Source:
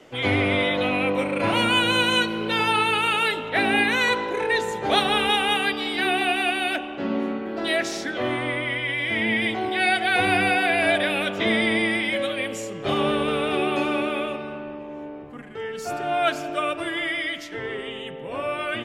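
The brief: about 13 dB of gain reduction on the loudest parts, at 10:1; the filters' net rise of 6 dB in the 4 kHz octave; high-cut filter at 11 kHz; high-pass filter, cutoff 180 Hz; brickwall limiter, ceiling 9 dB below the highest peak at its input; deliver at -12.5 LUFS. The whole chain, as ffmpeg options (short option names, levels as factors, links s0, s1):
-af "highpass=180,lowpass=11000,equalizer=f=4000:t=o:g=8,acompressor=threshold=0.0501:ratio=10,volume=10,alimiter=limit=0.596:level=0:latency=1"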